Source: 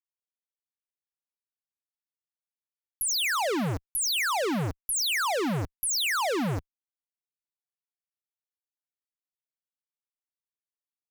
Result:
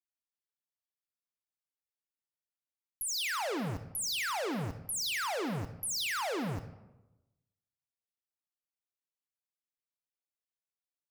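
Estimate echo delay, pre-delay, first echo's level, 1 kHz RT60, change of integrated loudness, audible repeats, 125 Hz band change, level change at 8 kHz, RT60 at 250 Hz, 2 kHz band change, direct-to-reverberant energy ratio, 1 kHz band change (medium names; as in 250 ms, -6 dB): no echo, 31 ms, no echo, 1.0 s, -7.0 dB, no echo, -7.0 dB, -7.0 dB, 1.1 s, -7.0 dB, 9.5 dB, -7.0 dB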